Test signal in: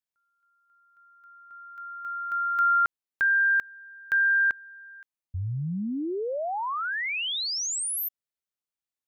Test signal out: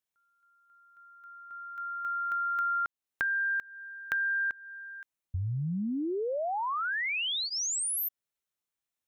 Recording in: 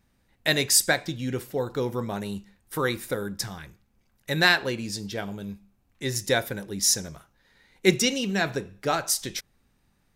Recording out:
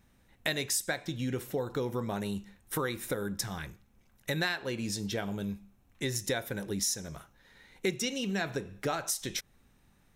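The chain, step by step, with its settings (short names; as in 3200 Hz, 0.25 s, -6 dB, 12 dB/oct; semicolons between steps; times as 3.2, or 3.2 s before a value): compressor 4:1, threshold -33 dBFS; notch 4700 Hz, Q 9; gain +2.5 dB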